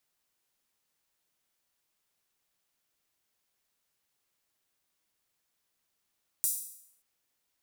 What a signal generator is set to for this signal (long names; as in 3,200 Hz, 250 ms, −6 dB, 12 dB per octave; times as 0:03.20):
open synth hi-hat length 0.58 s, high-pass 8,500 Hz, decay 0.71 s